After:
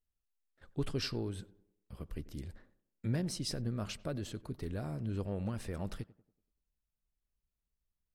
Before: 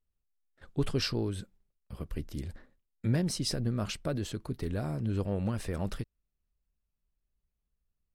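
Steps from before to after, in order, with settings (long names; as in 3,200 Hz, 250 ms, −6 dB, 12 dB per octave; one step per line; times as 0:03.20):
tape delay 94 ms, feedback 50%, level −17 dB, low-pass 1,200 Hz
level −5.5 dB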